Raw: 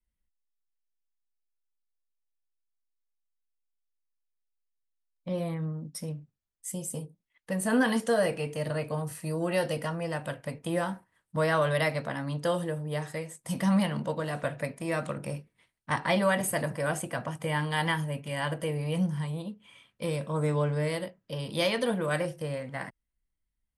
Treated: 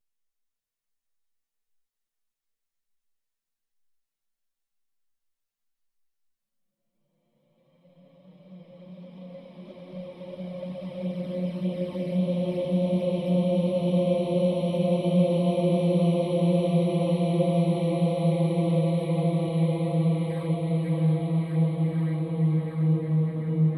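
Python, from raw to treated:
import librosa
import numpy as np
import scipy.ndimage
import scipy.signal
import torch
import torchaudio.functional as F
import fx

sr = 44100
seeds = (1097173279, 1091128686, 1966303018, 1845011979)

y = fx.paulstretch(x, sr, seeds[0], factor=25.0, window_s=0.5, from_s=4.77)
y = fx.env_flanger(y, sr, rest_ms=8.8, full_db=-31.0)
y = fx.echo_diffused(y, sr, ms=672, feedback_pct=53, wet_db=-4.0)
y = y * librosa.db_to_amplitude(6.5)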